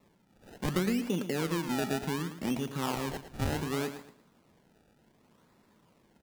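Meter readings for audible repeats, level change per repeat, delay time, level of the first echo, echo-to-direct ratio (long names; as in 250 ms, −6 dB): 3, −11.5 dB, 111 ms, −11.0 dB, −10.5 dB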